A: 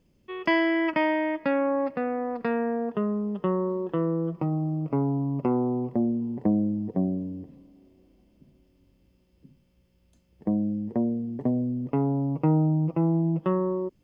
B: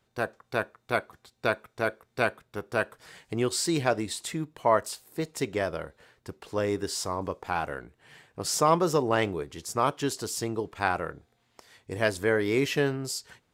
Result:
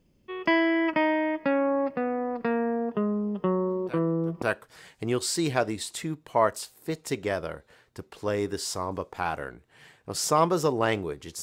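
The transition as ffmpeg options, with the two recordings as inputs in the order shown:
-filter_complex "[1:a]asplit=2[s0][s1];[0:a]apad=whole_dur=11.42,atrim=end=11.42,atrim=end=4.422[s2];[s1]atrim=start=2.718:end=9.72[s3];[s0]atrim=start=2.01:end=2.72,asetpts=PTS-STARTPTS,volume=0.141,afade=t=in:d=0.004:c=hsin,afade=t=out:st=0.706:d=0.004:c=hsin,adelay=3710[s4];[s2][s3]acrossfade=d=0.004:c1=hsin:c2=hsin[s5];[s5][s4]amix=inputs=2:normalize=0"

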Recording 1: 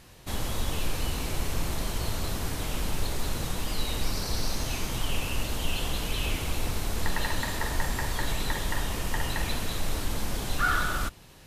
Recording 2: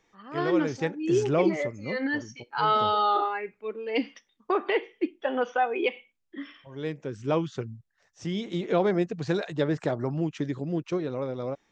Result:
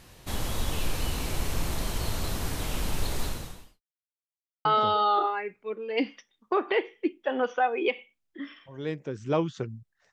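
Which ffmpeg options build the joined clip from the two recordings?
-filter_complex "[0:a]apad=whole_dur=10.12,atrim=end=10.12,asplit=2[s0][s1];[s0]atrim=end=3.81,asetpts=PTS-STARTPTS,afade=t=out:st=3.23:d=0.58:c=qua[s2];[s1]atrim=start=3.81:end=4.65,asetpts=PTS-STARTPTS,volume=0[s3];[1:a]atrim=start=2.63:end=8.1,asetpts=PTS-STARTPTS,afade=t=in:d=0.004:c=hsin[s4];[s2][s3][s4]concat=n=3:v=0:a=1"

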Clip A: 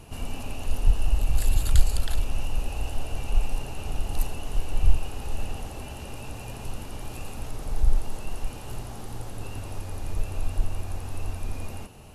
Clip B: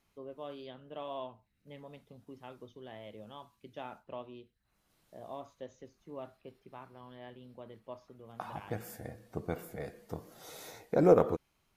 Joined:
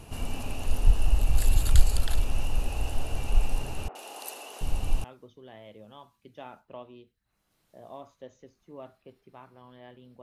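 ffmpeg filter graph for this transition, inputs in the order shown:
-filter_complex "[0:a]asettb=1/sr,asplit=3[s0][s1][s2];[s0]atrim=end=3.884[s3];[s1]atrim=start=3.88:end=5.04,asetpts=PTS-STARTPTS,afade=t=in:d=0.004:c=qsin,afade=t=out:st=1.156:d=0.004:c=qsin,acrossover=split=380|1700[s4][s5][s6];[s6]adelay=70[s7];[s4]adelay=730[s8];[s8][s5][s7]amix=inputs=3:normalize=0,atrim=end_sample=51156[s9];[s2]atrim=start=5.036[s10];[s3][s9]acrossfade=d=0.004:c1=hsin:c2=qsin[s11];[s11][s10]acrossfade=d=0.004:c1=qsin:c2=hsin,apad=whole_dur=10.22,atrim=end=10.22,atrim=end=5.042[s12];[1:a]atrim=start=2.428:end=7.61[s13];[s12][s13]acrossfade=d=0.004:c1=hsin:c2=hsin"

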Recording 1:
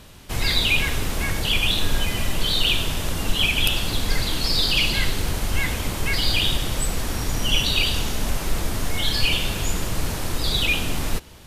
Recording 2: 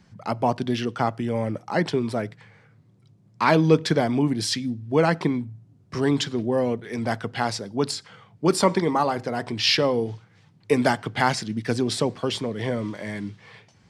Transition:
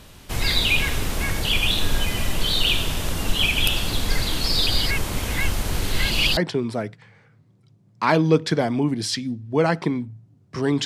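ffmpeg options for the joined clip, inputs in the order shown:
-filter_complex "[0:a]apad=whole_dur=10.85,atrim=end=10.85,asplit=2[s0][s1];[s0]atrim=end=4.672[s2];[s1]atrim=start=4.668:end=6.372,asetpts=PTS-STARTPTS,areverse[s3];[1:a]atrim=start=1.758:end=6.24[s4];[s2][s3]acrossfade=d=0.004:c1=hsin:c2=hsin[s5];[s5][s4]acrossfade=d=0.004:c1=hsin:c2=hsin"

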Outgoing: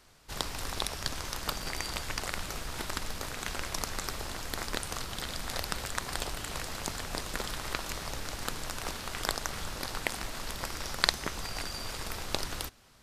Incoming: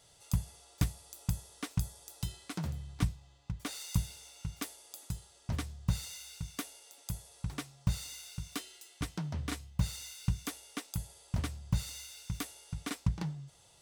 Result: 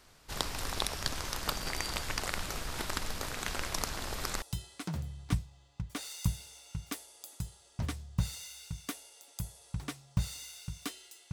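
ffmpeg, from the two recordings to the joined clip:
-filter_complex "[0:a]apad=whole_dur=11.32,atrim=end=11.32,asplit=2[s0][s1];[s0]atrim=end=3.922[s2];[s1]atrim=start=3.918:end=4.422,asetpts=PTS-STARTPTS,areverse[s3];[1:a]atrim=start=2.118:end=9.02[s4];[s2][s3]acrossfade=d=0.004:c1=hsin:c2=hsin[s5];[s5][s4]acrossfade=d=0.004:c1=hsin:c2=hsin"

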